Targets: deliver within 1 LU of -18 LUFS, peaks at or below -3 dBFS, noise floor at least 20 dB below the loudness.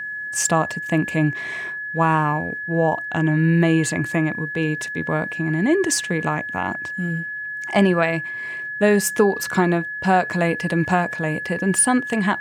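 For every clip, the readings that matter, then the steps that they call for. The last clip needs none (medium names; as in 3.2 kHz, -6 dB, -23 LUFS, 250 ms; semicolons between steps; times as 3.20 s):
steady tone 1.7 kHz; tone level -27 dBFS; loudness -21.0 LUFS; peak level -5.5 dBFS; loudness target -18.0 LUFS
-> band-stop 1.7 kHz, Q 30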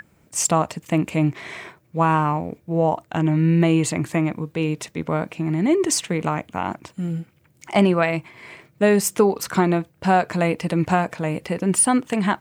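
steady tone not found; loudness -21.5 LUFS; peak level -5.5 dBFS; loudness target -18.0 LUFS
-> trim +3.5 dB; peak limiter -3 dBFS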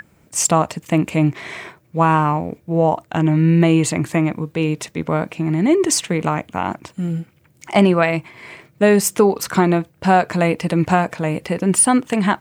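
loudness -18.0 LUFS; peak level -3.0 dBFS; noise floor -56 dBFS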